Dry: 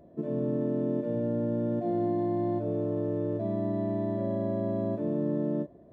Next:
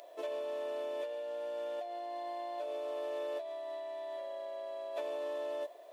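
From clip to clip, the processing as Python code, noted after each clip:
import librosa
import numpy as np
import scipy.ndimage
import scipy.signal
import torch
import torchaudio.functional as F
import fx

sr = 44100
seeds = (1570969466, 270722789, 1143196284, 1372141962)

y = scipy.signal.sosfilt(scipy.signal.cheby2(4, 60, 190.0, 'highpass', fs=sr, output='sos'), x)
y = fx.high_shelf_res(y, sr, hz=2100.0, db=9.0, q=1.5)
y = fx.over_compress(y, sr, threshold_db=-46.0, ratio=-1.0)
y = F.gain(torch.from_numpy(y), 6.5).numpy()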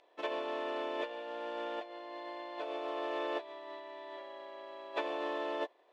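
y = fx.spec_clip(x, sr, under_db=17)
y = scipy.signal.sosfilt(scipy.signal.butter(2, 3400.0, 'lowpass', fs=sr, output='sos'), y)
y = fx.upward_expand(y, sr, threshold_db=-48.0, expansion=2.5)
y = F.gain(torch.from_numpy(y), 5.0).numpy()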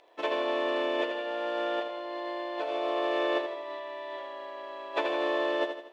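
y = fx.echo_feedback(x, sr, ms=80, feedback_pct=46, wet_db=-7.5)
y = F.gain(torch.from_numpy(y), 6.0).numpy()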